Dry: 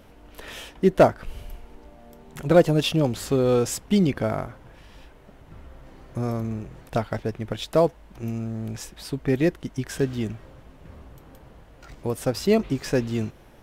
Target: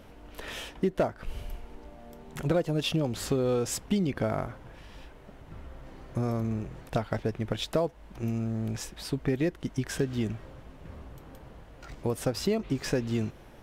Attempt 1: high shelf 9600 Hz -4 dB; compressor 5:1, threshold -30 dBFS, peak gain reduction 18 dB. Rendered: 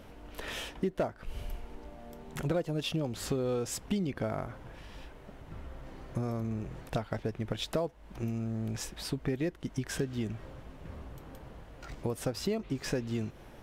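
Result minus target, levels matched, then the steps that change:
compressor: peak gain reduction +5 dB
change: compressor 5:1, threshold -24 dBFS, peak gain reduction 13 dB

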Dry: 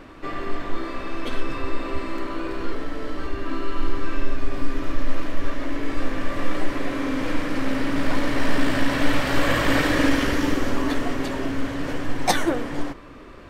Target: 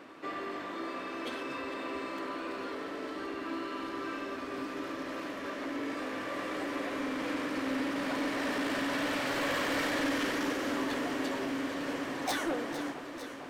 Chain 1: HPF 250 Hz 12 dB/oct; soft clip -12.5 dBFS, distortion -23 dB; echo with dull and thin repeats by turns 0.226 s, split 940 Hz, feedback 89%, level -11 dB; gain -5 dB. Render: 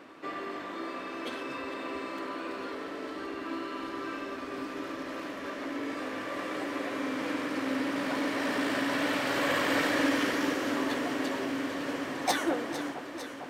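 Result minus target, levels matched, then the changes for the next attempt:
soft clip: distortion -12 dB
change: soft clip -23 dBFS, distortion -11 dB

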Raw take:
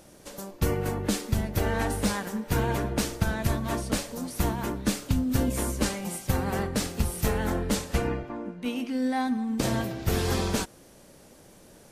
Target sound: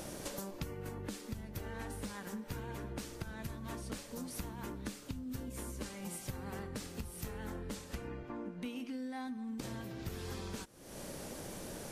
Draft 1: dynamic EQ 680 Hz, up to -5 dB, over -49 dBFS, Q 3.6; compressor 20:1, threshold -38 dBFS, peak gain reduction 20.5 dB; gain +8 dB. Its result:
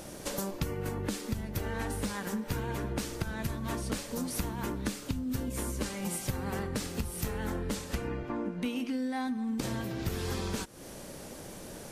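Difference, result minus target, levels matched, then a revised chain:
compressor: peak gain reduction -8.5 dB
dynamic EQ 680 Hz, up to -5 dB, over -49 dBFS, Q 3.6; compressor 20:1, threshold -47 dBFS, peak gain reduction 29 dB; gain +8 dB

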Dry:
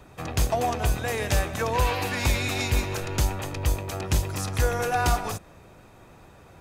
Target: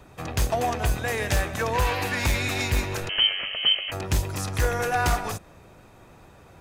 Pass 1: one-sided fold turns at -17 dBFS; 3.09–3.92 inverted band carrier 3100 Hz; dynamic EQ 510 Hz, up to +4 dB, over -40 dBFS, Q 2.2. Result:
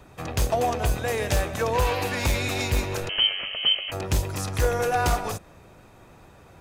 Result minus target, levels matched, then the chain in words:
500 Hz band +3.0 dB
one-sided fold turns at -17 dBFS; 3.09–3.92 inverted band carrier 3100 Hz; dynamic EQ 1800 Hz, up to +4 dB, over -40 dBFS, Q 2.2

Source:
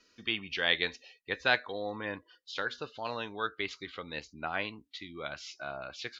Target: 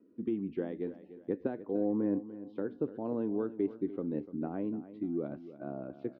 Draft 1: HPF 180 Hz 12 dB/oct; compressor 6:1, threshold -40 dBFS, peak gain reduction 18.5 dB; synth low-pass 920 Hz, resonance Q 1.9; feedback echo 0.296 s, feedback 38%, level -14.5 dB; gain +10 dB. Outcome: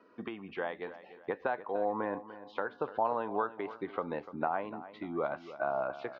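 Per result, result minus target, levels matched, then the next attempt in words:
1000 Hz band +15.5 dB; compressor: peak gain reduction +7.5 dB
HPF 180 Hz 12 dB/oct; compressor 6:1, threshold -40 dBFS, peak gain reduction 18.5 dB; synth low-pass 300 Hz, resonance Q 1.9; feedback echo 0.296 s, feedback 38%, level -14.5 dB; gain +10 dB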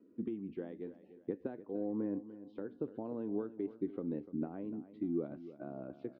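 compressor: peak gain reduction +7.5 dB
HPF 180 Hz 12 dB/oct; compressor 6:1, threshold -31 dBFS, peak gain reduction 11 dB; synth low-pass 300 Hz, resonance Q 1.9; feedback echo 0.296 s, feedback 38%, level -14.5 dB; gain +10 dB

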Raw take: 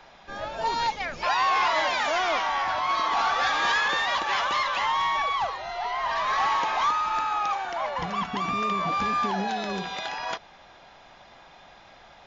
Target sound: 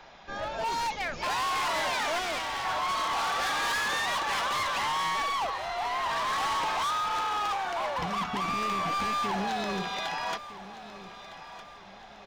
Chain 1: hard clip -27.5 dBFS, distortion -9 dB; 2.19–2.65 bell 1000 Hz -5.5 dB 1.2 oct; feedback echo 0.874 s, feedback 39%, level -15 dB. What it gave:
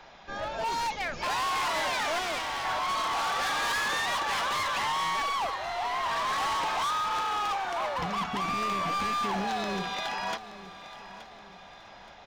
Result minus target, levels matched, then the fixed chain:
echo 0.386 s early
hard clip -27.5 dBFS, distortion -9 dB; 2.19–2.65 bell 1000 Hz -5.5 dB 1.2 oct; feedback echo 1.26 s, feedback 39%, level -15 dB

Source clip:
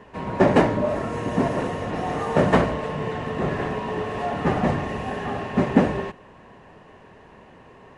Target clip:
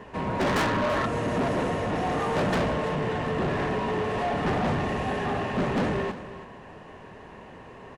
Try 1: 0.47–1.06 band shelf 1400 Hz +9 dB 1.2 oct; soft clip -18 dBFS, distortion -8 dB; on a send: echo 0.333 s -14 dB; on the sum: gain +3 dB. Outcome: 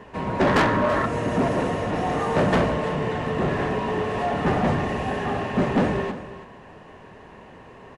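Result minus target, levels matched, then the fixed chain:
soft clip: distortion -4 dB
0.47–1.06 band shelf 1400 Hz +9 dB 1.2 oct; soft clip -25.5 dBFS, distortion -4 dB; on a send: echo 0.333 s -14 dB; on the sum: gain +3 dB

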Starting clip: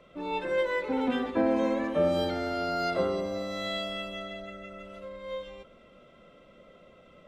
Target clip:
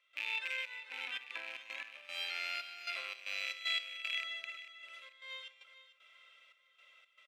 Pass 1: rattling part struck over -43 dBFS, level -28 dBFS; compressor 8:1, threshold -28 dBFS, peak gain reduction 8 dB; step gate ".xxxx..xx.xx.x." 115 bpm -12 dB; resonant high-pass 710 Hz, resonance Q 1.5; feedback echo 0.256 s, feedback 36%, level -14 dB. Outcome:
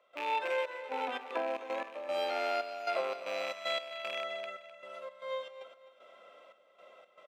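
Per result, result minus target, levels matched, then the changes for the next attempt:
1000 Hz band +12.0 dB; echo 0.189 s early
change: resonant high-pass 2300 Hz, resonance Q 1.5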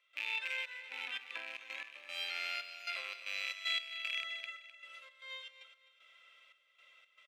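echo 0.189 s early
change: feedback echo 0.445 s, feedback 36%, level -14 dB

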